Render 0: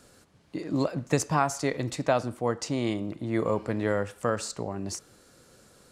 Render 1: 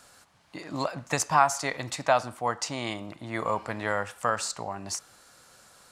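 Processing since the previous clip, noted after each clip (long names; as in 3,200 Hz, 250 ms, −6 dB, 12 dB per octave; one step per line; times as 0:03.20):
low shelf with overshoot 580 Hz −9.5 dB, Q 1.5
level +3.5 dB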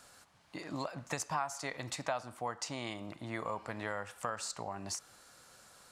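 downward compressor 2.5 to 1, threshold −33 dBFS, peak gain reduction 12.5 dB
level −3.5 dB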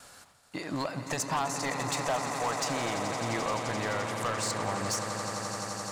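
noise gate with hold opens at −51 dBFS
echo that builds up and dies away 86 ms, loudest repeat 8, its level −13 dB
hard clipping −31.5 dBFS, distortion −12 dB
level +7 dB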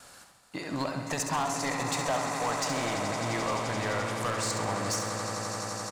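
repeating echo 68 ms, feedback 52%, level −7.5 dB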